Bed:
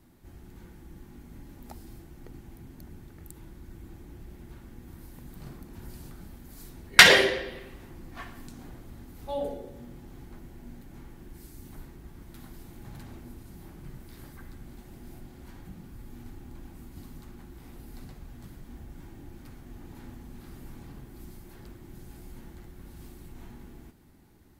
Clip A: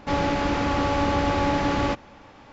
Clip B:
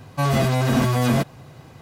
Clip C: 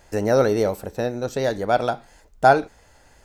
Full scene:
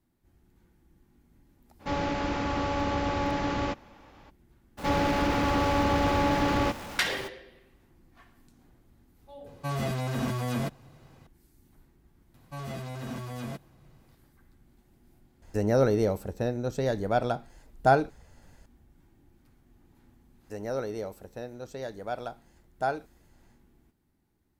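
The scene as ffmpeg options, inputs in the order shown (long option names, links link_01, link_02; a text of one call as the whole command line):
ffmpeg -i bed.wav -i cue0.wav -i cue1.wav -i cue2.wav -filter_complex "[1:a]asplit=2[link_01][link_02];[2:a]asplit=2[link_03][link_04];[3:a]asplit=2[link_05][link_06];[0:a]volume=-15dB[link_07];[link_02]aeval=exprs='val(0)+0.5*0.02*sgn(val(0))':channel_layout=same[link_08];[link_05]lowshelf=frequency=270:gain=9.5[link_09];[link_01]atrim=end=2.52,asetpts=PTS-STARTPTS,volume=-6dB,afade=type=in:duration=0.02,afade=type=out:start_time=2.5:duration=0.02,adelay=1790[link_10];[link_08]atrim=end=2.52,asetpts=PTS-STARTPTS,volume=-3dB,afade=type=in:duration=0.02,afade=type=out:start_time=2.5:duration=0.02,adelay=210357S[link_11];[link_03]atrim=end=1.81,asetpts=PTS-STARTPTS,volume=-11dB,afade=type=in:duration=0.004:curve=hsin,afade=type=out:start_time=1.806:duration=0.004:curve=hsin,adelay=417186S[link_12];[link_04]atrim=end=1.81,asetpts=PTS-STARTPTS,volume=-18dB,afade=type=in:duration=0.004:curve=hsin,afade=type=out:start_time=1.806:duration=0.004:curve=hsin,adelay=12340[link_13];[link_09]atrim=end=3.24,asetpts=PTS-STARTPTS,volume=-8dB,afade=type=in:duration=0.004:curve=hsin,afade=type=out:start_time=3.236:duration=0.004:curve=hsin,adelay=15420[link_14];[link_06]atrim=end=3.24,asetpts=PTS-STARTPTS,volume=-14.5dB,afade=type=in:duration=0.1,afade=type=out:start_time=3.14:duration=0.1,adelay=20380[link_15];[link_07][link_10][link_11][link_12][link_13][link_14][link_15]amix=inputs=7:normalize=0" out.wav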